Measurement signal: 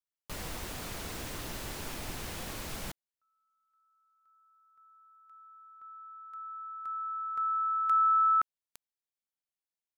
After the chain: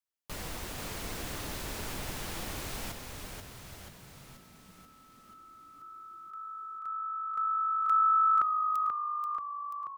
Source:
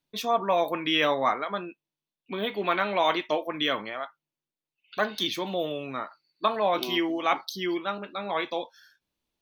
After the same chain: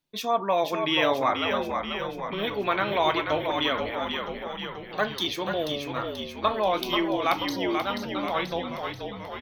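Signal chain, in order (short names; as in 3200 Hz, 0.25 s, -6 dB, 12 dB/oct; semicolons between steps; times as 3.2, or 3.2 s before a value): frequency-shifting echo 0.484 s, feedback 60%, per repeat -51 Hz, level -5.5 dB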